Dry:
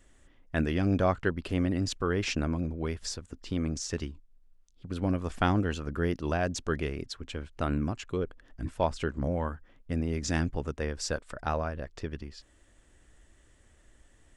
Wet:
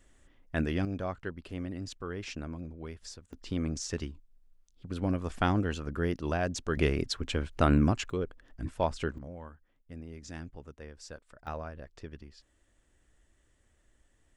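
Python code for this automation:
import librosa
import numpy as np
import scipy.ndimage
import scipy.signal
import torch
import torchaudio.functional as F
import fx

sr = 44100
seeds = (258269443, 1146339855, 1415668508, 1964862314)

y = fx.gain(x, sr, db=fx.steps((0.0, -2.0), (0.85, -9.5), (3.33, -1.5), (6.77, 6.0), (8.1, -1.5), (9.18, -14.0), (11.47, -8.0)))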